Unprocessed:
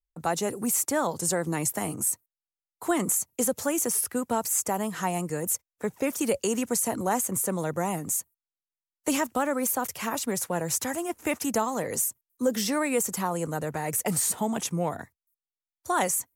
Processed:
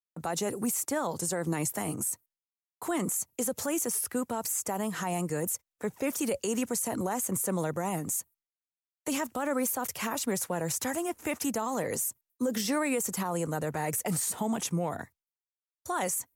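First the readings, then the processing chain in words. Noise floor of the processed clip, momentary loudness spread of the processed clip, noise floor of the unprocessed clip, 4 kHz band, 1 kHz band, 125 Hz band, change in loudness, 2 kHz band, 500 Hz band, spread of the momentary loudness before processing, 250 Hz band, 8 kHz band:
under -85 dBFS, 5 LU, under -85 dBFS, -3.0 dB, -4.5 dB, -1.5 dB, -3.5 dB, -3.5 dB, -3.5 dB, 5 LU, -2.5 dB, -4.0 dB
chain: peak limiter -21.5 dBFS, peak gain reduction 8.5 dB; expander -57 dBFS

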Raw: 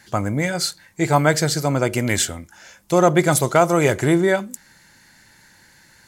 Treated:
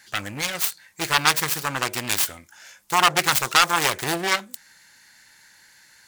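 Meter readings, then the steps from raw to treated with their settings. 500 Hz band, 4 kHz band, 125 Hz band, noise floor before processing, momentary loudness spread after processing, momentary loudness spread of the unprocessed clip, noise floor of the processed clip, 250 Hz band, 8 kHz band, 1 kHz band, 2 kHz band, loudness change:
-13.5 dB, +5.5 dB, -14.5 dB, -53 dBFS, 10 LU, 9 LU, -54 dBFS, -13.5 dB, -0.5 dB, 0.0 dB, +1.5 dB, -2.5 dB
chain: self-modulated delay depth 0.97 ms; tilt shelf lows -7.5 dB, about 680 Hz; trim -6.5 dB

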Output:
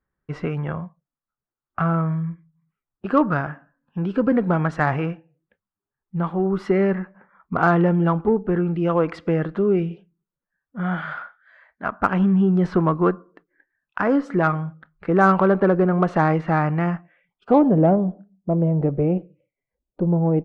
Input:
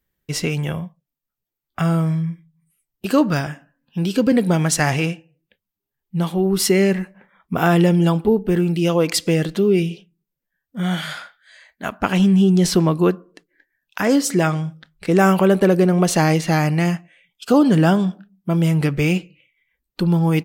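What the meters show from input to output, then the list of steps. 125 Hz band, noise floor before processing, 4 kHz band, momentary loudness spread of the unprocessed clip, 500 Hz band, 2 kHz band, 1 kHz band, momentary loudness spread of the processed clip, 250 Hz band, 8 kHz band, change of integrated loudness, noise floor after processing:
-3.5 dB, -84 dBFS, under -15 dB, 15 LU, -2.0 dB, -2.5 dB, +1.5 dB, 15 LU, -3.0 dB, under -30 dB, -2.5 dB, under -85 dBFS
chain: low-pass sweep 1.3 kHz -> 610 Hz, 17.20–17.82 s; Chebyshev shaper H 8 -36 dB, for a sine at 0.5 dBFS; trim -3.5 dB

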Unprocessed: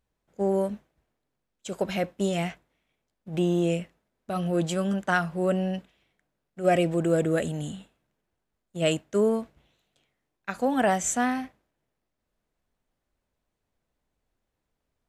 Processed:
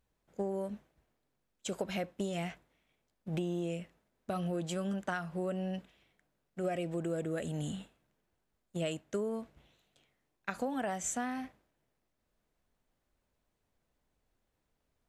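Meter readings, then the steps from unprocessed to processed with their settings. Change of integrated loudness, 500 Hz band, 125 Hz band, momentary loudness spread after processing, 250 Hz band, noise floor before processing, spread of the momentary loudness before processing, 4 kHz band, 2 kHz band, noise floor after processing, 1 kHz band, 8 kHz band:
-10.5 dB, -11.0 dB, -9.0 dB, 13 LU, -9.5 dB, -82 dBFS, 15 LU, -9.5 dB, -11.0 dB, -82 dBFS, -11.0 dB, -8.0 dB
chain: compression 6:1, threshold -33 dBFS, peak gain reduction 15 dB

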